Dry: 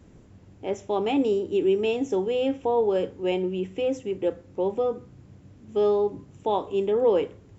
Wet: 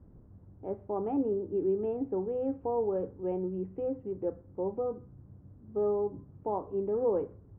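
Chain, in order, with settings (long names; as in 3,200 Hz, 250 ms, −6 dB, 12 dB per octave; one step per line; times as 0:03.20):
low-pass filter 1,300 Hz 24 dB per octave
low-shelf EQ 150 Hz +9.5 dB
level −8.5 dB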